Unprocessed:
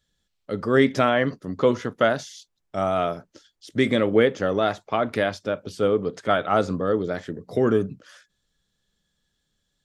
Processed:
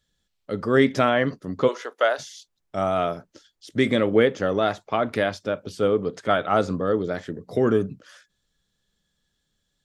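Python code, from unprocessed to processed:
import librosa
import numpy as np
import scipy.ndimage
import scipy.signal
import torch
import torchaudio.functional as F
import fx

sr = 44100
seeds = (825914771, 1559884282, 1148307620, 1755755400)

y = fx.highpass(x, sr, hz=450.0, slope=24, at=(1.67, 2.18), fade=0.02)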